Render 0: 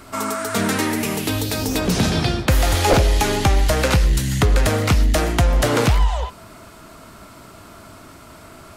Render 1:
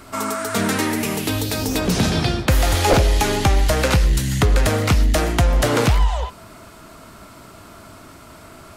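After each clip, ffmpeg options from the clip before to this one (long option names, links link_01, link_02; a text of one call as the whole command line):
ffmpeg -i in.wav -af anull out.wav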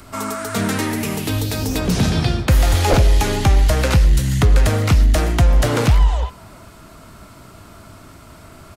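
ffmpeg -i in.wav -filter_complex "[0:a]acrossover=split=170|2500[link_01][link_02][link_03];[link_01]acontrast=55[link_04];[link_02]aecho=1:1:348:0.0841[link_05];[link_03]acompressor=mode=upward:threshold=-49dB:ratio=2.5[link_06];[link_04][link_05][link_06]amix=inputs=3:normalize=0,volume=-1.5dB" out.wav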